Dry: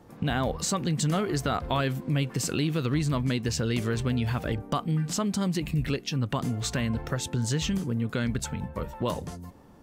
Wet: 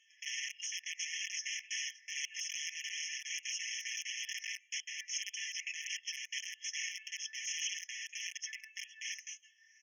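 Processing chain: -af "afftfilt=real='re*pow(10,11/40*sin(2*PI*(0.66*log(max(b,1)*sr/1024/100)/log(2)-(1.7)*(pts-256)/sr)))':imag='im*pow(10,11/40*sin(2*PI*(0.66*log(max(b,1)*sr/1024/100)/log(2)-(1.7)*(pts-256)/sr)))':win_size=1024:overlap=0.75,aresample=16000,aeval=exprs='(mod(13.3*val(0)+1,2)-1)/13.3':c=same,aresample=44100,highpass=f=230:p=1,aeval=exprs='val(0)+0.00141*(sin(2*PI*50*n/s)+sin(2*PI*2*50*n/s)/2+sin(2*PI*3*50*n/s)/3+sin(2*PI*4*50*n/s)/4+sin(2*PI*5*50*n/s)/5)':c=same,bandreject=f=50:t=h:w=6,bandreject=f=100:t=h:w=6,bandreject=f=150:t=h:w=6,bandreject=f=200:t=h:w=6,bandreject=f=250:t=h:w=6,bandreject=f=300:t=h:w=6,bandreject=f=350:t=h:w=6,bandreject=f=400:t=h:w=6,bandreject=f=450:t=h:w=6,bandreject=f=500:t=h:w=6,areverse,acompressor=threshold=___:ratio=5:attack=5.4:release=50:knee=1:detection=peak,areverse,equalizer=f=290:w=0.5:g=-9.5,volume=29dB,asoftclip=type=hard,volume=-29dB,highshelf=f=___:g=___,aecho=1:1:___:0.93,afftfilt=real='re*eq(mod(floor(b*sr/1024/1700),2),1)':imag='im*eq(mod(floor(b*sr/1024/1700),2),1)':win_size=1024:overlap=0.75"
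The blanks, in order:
-39dB, 3500, 5.5, 5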